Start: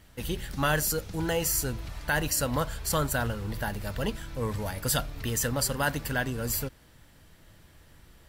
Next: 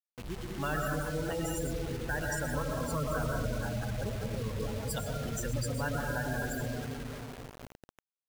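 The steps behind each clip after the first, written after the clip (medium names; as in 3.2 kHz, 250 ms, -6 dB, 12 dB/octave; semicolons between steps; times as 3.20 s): algorithmic reverb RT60 3.8 s, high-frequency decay 0.4×, pre-delay 70 ms, DRR -3 dB; spectral gate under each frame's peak -15 dB strong; bit crusher 6-bit; trim -8 dB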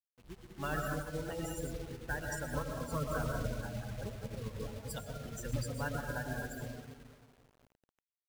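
upward expansion 2.5:1, over -43 dBFS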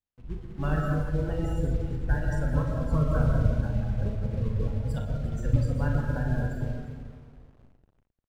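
RIAA curve playback; on a send: multi-tap echo 40/63/351 ms -6.5/-10/-15 dB; on the sum: trim +2 dB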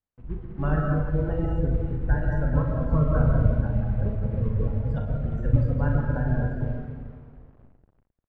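low-pass 1.8 kHz 12 dB/octave; trim +3 dB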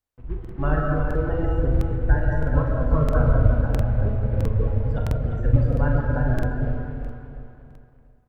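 peaking EQ 180 Hz -9.5 dB 0.59 oct; on a send: feedback delay 347 ms, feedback 42%, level -10 dB; on the sum: crackling interface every 0.66 s, samples 2048, repeat, from 0.40 s; trim +4 dB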